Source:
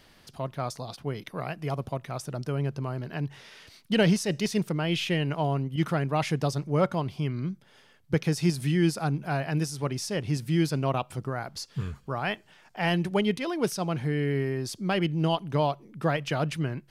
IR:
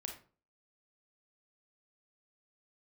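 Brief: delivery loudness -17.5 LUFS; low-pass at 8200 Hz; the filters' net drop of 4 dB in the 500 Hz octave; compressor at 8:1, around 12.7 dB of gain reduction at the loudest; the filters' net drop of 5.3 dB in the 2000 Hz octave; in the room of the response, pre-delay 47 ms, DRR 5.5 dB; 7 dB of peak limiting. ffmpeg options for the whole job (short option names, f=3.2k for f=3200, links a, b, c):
-filter_complex "[0:a]lowpass=8.2k,equalizer=f=500:t=o:g=-5,equalizer=f=2k:t=o:g=-6.5,acompressor=threshold=-33dB:ratio=8,alimiter=level_in=6dB:limit=-24dB:level=0:latency=1,volume=-6dB,asplit=2[a][b];[1:a]atrim=start_sample=2205,adelay=47[c];[b][c]afir=irnorm=-1:irlink=0,volume=-3dB[d];[a][d]amix=inputs=2:normalize=0,volume=21dB"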